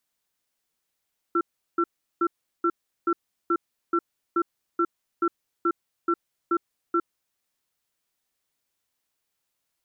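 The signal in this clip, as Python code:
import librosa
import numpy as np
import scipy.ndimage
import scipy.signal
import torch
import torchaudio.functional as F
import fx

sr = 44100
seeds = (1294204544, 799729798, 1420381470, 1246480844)

y = fx.cadence(sr, length_s=5.82, low_hz=341.0, high_hz=1350.0, on_s=0.06, off_s=0.37, level_db=-22.0)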